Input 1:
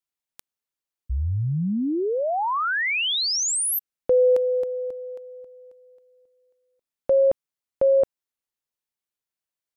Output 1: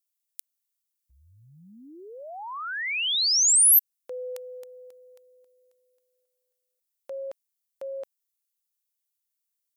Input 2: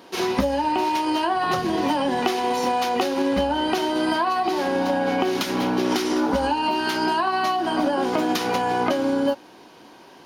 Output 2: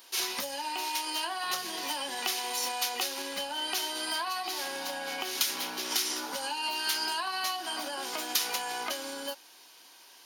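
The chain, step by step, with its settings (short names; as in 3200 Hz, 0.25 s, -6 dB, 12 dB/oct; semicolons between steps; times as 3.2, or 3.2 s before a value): differentiator; gain +5 dB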